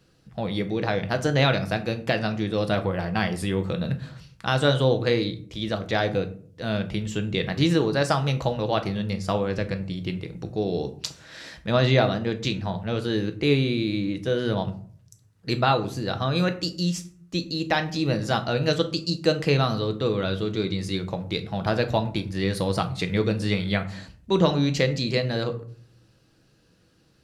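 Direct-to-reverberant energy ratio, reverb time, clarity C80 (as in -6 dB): 7.0 dB, 0.50 s, 18.5 dB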